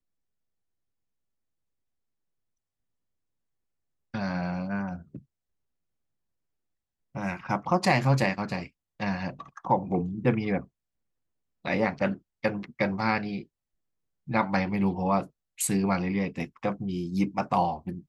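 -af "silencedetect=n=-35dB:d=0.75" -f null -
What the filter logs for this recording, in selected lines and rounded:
silence_start: 0.00
silence_end: 4.14 | silence_duration: 4.14
silence_start: 5.17
silence_end: 7.15 | silence_duration: 1.99
silence_start: 10.61
silence_end: 11.65 | silence_duration: 1.04
silence_start: 13.42
silence_end: 14.28 | silence_duration: 0.87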